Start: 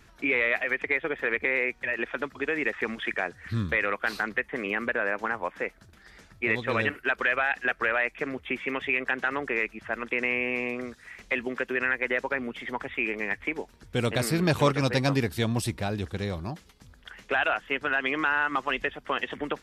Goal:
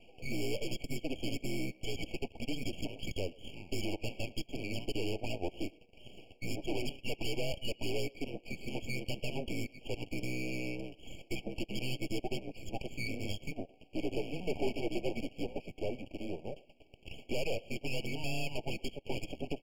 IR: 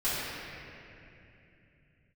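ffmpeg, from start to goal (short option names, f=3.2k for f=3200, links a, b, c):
-filter_complex "[0:a]asplit=2[a][b];[b]acompressor=threshold=-42dB:ratio=6,volume=2dB[c];[a][c]amix=inputs=2:normalize=0,highpass=f=520:t=q:w=0.5412,highpass=f=520:t=q:w=1.307,lowpass=f=2.2k:t=q:w=0.5176,lowpass=f=2.2k:t=q:w=0.7071,lowpass=f=2.2k:t=q:w=1.932,afreqshift=-180,asoftclip=type=tanh:threshold=-25dB,asettb=1/sr,asplit=3[d][e][f];[d]atrim=end=13.034[g];[e]atrim=start=13.03:end=13.5,asetpts=PTS-STARTPTS,afade=t=in:d=0.004:c=qsin,afade=t=out:st=0.466:d=0.004:c=qsin,asplit=2[h][i];[i]adelay=29,volume=-6dB[j];[h][j]amix=inputs=2:normalize=0,atrim=end_sample=20727[k];[f]atrim=start=13.496[l];[g][k]acrossfade=d=0.004:c1=hsin:c2=qsin[m];[m][l]acrossfade=d=0.004:c1=qsin:c2=hsin,aeval=exprs='max(val(0),0)':c=same,asuperstop=centerf=1100:order=4:qfactor=1,asplit=2[n][o];[o]adelay=110,highpass=300,lowpass=3.4k,asoftclip=type=hard:threshold=-32.5dB,volume=-21dB[p];[n][p]amix=inputs=2:normalize=0,afftfilt=real='re*eq(mod(floor(b*sr/1024/1100),2),0)':imag='im*eq(mod(floor(b*sr/1024/1100),2),0)':win_size=1024:overlap=0.75,volume=4dB"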